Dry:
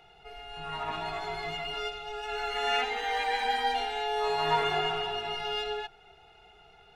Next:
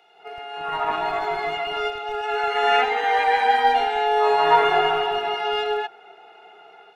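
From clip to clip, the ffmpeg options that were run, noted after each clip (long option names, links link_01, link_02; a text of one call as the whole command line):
ffmpeg -i in.wav -filter_complex "[0:a]acrossover=split=260|2200[link_01][link_02][link_03];[link_01]acrusher=bits=5:dc=4:mix=0:aa=0.000001[link_04];[link_02]dynaudnorm=framelen=130:gausssize=3:maxgain=11.5dB[link_05];[link_04][link_05][link_03]amix=inputs=3:normalize=0" out.wav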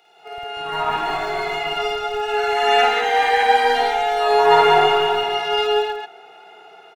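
ffmpeg -i in.wav -af "bass=frequency=250:gain=3,treble=frequency=4000:gain=8,aecho=1:1:52.48|189.5:1|0.708,volume=-1dB" out.wav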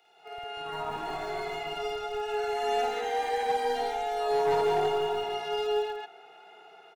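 ffmpeg -i in.wav -filter_complex "[0:a]acrossover=split=310|720|4700[link_01][link_02][link_03][link_04];[link_03]acompressor=threshold=-30dB:ratio=6[link_05];[link_01][link_02][link_05][link_04]amix=inputs=4:normalize=0,asoftclip=type=hard:threshold=-12.5dB,volume=-8dB" out.wav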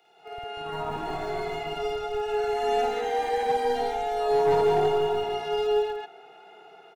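ffmpeg -i in.wav -af "lowshelf=frequency=460:gain=8.5" out.wav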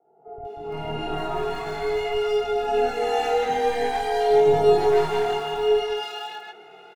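ffmpeg -i in.wav -filter_complex "[0:a]flanger=delay=18.5:depth=7.3:speed=0.47,acrossover=split=810[link_01][link_02];[link_02]adelay=450[link_03];[link_01][link_03]amix=inputs=2:normalize=0,volume=7.5dB" out.wav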